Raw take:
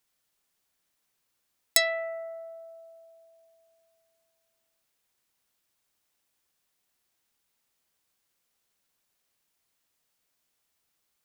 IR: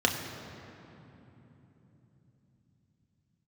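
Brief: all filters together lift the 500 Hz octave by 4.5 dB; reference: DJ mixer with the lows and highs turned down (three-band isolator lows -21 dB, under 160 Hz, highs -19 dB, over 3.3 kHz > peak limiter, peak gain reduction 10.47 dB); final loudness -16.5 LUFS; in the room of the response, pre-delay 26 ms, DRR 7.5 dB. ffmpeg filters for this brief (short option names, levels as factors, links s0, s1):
-filter_complex "[0:a]equalizer=f=500:t=o:g=7.5,asplit=2[s0][s1];[1:a]atrim=start_sample=2205,adelay=26[s2];[s1][s2]afir=irnorm=-1:irlink=0,volume=0.1[s3];[s0][s3]amix=inputs=2:normalize=0,acrossover=split=160 3300:gain=0.0891 1 0.112[s4][s5][s6];[s4][s5][s6]amix=inputs=3:normalize=0,volume=8.91,alimiter=limit=0.531:level=0:latency=1"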